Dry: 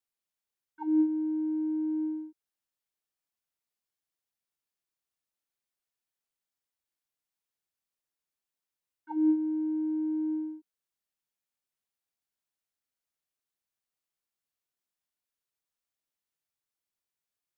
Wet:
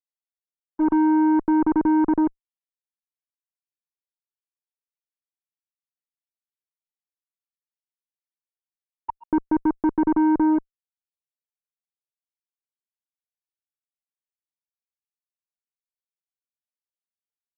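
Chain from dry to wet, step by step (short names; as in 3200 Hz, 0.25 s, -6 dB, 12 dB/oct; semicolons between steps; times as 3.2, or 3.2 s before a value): random spectral dropouts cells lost 45%; fuzz box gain 52 dB, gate -53 dBFS; LPF 1200 Hz 24 dB/oct; gain -3.5 dB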